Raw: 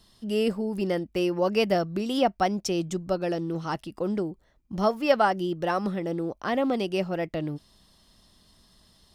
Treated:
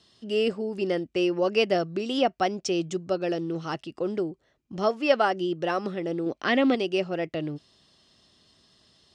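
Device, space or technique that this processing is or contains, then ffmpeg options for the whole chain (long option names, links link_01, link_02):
car door speaker: -filter_complex "[0:a]asettb=1/sr,asplit=3[link_01][link_02][link_03];[link_01]atrim=end=6.264[link_04];[link_02]atrim=start=6.26:end=6.75,asetpts=PTS-STARTPTS,afade=type=in:duration=0.004:curve=qsin,afade=type=out:start_time=0.486:duration=0.004:curve=qsin,equalizer=frequency=250:width_type=o:width=1:gain=6,equalizer=frequency=2000:width_type=o:width=1:gain=8,equalizer=frequency=4000:width_type=o:width=1:gain=6[link_05];[link_03]atrim=start=6.746[link_06];[link_04][link_05]acrossfade=duration=0.004:curve1=hsin:curve2=qsin[link_07];[link_07][link_06]acrossfade=duration=0.004:curve1=qsin:curve2=hsin,highpass=110,equalizer=frequency=200:width_type=q:width=4:gain=-6,equalizer=frequency=390:width_type=q:width=4:gain=3,equalizer=frequency=930:width_type=q:width=4:gain=-5,equalizer=frequency=2800:width_type=q:width=4:gain=4,lowpass=frequency=7800:width=0.5412,lowpass=frequency=7800:width=1.3066"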